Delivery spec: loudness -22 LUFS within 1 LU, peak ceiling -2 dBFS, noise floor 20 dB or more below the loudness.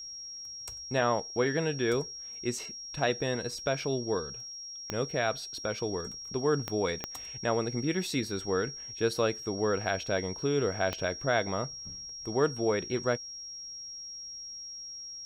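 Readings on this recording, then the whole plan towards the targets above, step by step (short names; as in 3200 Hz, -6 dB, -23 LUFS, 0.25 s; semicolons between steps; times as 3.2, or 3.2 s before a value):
clicks 4; steady tone 5600 Hz; tone level -40 dBFS; loudness -32.0 LUFS; peak -13.5 dBFS; loudness target -22.0 LUFS
-> de-click; notch 5600 Hz, Q 30; gain +10 dB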